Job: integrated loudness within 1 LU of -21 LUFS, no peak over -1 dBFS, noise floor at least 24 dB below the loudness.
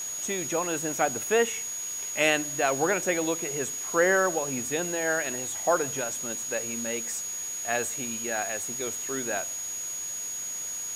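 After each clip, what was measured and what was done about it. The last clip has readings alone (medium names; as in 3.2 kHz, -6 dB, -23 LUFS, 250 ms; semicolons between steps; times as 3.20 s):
steady tone 6.7 kHz; tone level -32 dBFS; noise floor -35 dBFS; noise floor target -52 dBFS; loudness -27.5 LUFS; peak level -8.0 dBFS; loudness target -21.0 LUFS
-> band-stop 6.7 kHz, Q 30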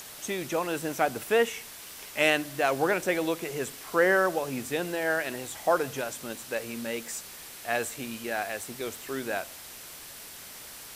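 steady tone not found; noise floor -45 dBFS; noise floor target -53 dBFS
-> noise print and reduce 8 dB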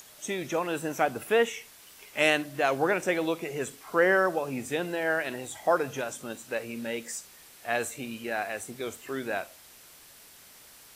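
noise floor -53 dBFS; noise floor target -54 dBFS
-> noise print and reduce 6 dB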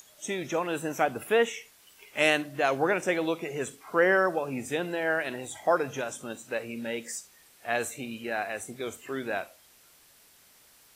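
noise floor -59 dBFS; loudness -29.5 LUFS; peak level -8.5 dBFS; loudness target -21.0 LUFS
-> trim +8.5 dB; peak limiter -1 dBFS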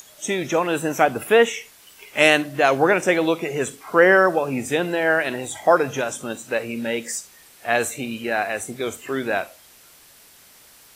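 loudness -21.0 LUFS; peak level -1.0 dBFS; noise floor -50 dBFS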